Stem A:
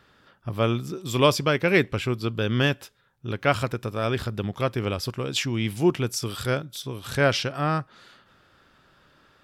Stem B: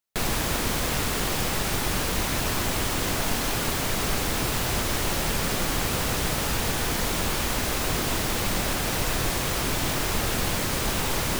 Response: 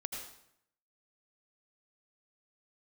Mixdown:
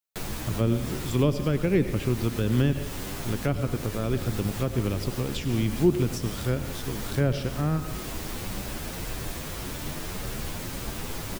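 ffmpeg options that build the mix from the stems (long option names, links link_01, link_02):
-filter_complex "[0:a]aeval=exprs='sgn(val(0))*max(abs(val(0))-0.00708,0)':channel_layout=same,volume=-0.5dB,asplit=2[link_01][link_02];[link_02]volume=-5dB[link_03];[1:a]highshelf=frequency=11000:gain=3.5,asplit=2[link_04][link_05];[link_05]adelay=9.4,afreqshift=1.8[link_06];[link_04][link_06]amix=inputs=2:normalize=1,volume=-3dB[link_07];[2:a]atrim=start_sample=2205[link_08];[link_03][link_08]afir=irnorm=-1:irlink=0[link_09];[link_01][link_07][link_09]amix=inputs=3:normalize=0,acrossover=split=390[link_10][link_11];[link_11]acompressor=threshold=-36dB:ratio=4[link_12];[link_10][link_12]amix=inputs=2:normalize=0"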